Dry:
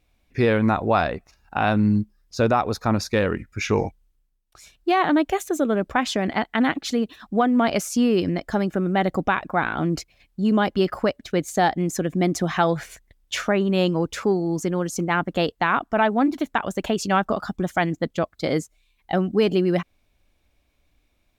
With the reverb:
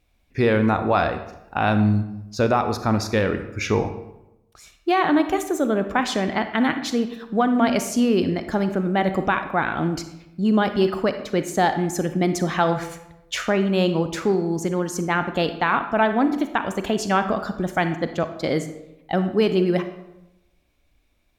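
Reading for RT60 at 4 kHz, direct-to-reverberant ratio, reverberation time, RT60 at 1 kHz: 0.60 s, 8.5 dB, 0.90 s, 0.85 s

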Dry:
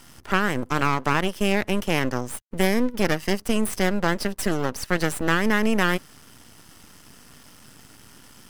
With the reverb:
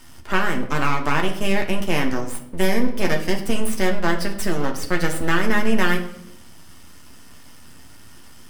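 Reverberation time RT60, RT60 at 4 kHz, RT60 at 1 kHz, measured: 0.75 s, 0.55 s, 0.65 s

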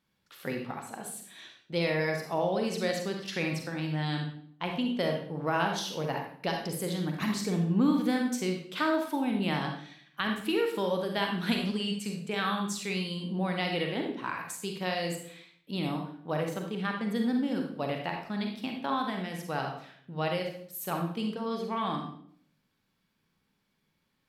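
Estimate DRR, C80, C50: 2.0 dB, 8.5 dB, 4.0 dB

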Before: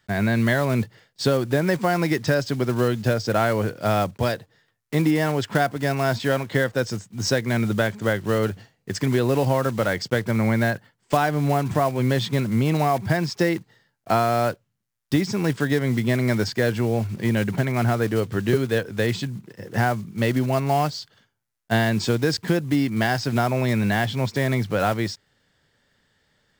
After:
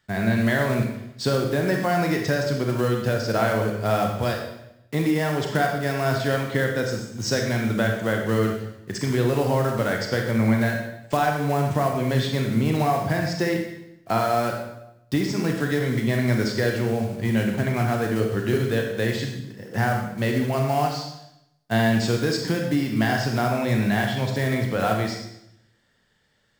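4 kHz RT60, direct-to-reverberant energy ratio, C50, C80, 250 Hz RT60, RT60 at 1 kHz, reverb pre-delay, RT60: 0.75 s, 1.5 dB, 4.0 dB, 7.0 dB, 0.90 s, 0.80 s, 28 ms, 0.80 s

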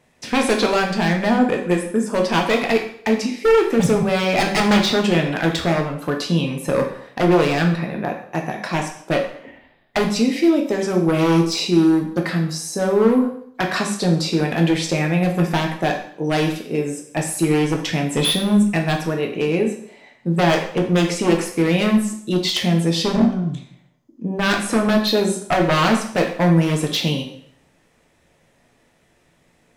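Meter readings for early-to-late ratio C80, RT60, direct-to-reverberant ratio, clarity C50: 10.5 dB, 0.60 s, 1.5 dB, 7.5 dB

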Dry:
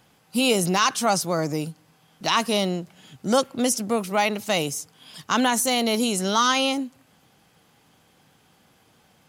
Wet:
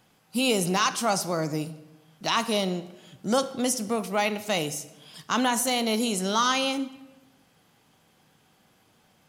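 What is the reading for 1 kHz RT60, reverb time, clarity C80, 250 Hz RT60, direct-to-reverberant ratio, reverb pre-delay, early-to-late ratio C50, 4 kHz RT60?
1.0 s, 1.0 s, 17.0 dB, 1.2 s, 11.0 dB, 3 ms, 14.5 dB, 0.80 s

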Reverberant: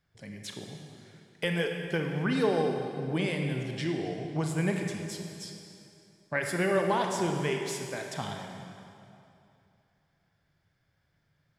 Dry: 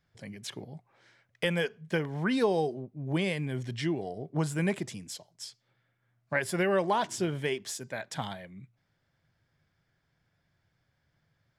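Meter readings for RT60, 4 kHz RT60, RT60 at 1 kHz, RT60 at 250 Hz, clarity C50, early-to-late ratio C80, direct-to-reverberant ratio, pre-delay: 2.7 s, 2.2 s, 2.7 s, 2.8 s, 3.5 dB, 4.5 dB, 2.5 dB, 27 ms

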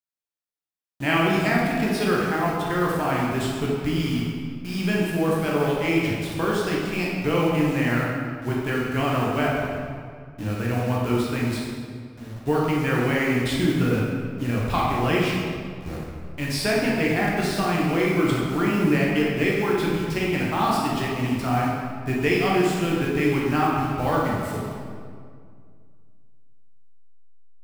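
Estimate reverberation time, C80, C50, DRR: 2.1 s, 1.0 dB, -1.0 dB, -4.5 dB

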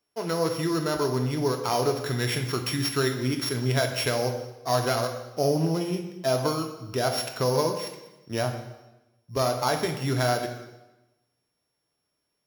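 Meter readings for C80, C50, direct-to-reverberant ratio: 9.5 dB, 7.5 dB, 4.0 dB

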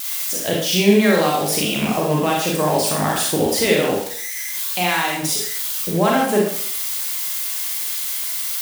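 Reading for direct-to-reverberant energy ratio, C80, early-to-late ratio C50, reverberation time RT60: -2.5 dB, 6.5 dB, 2.0 dB, 0.60 s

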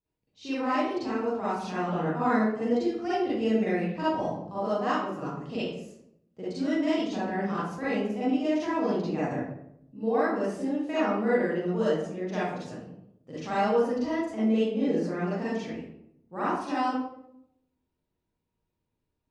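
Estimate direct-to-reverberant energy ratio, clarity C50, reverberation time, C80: -11.0 dB, -3.5 dB, 0.75 s, 2.5 dB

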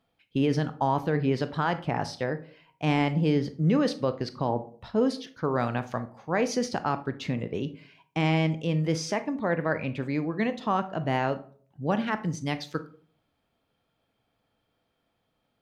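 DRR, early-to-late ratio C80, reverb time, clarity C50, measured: 10.5 dB, 20.5 dB, 0.50 s, 14.5 dB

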